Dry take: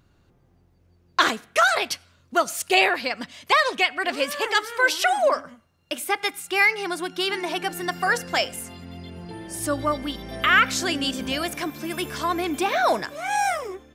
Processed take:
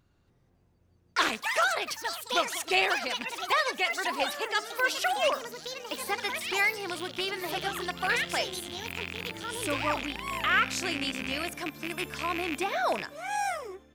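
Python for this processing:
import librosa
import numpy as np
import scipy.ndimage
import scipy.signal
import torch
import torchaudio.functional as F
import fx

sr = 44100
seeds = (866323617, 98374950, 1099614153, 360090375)

y = fx.rattle_buzz(x, sr, strikes_db=-35.0, level_db=-14.0)
y = fx.echo_pitch(y, sr, ms=275, semitones=5, count=3, db_per_echo=-6.0)
y = y * 10.0 ** (-7.5 / 20.0)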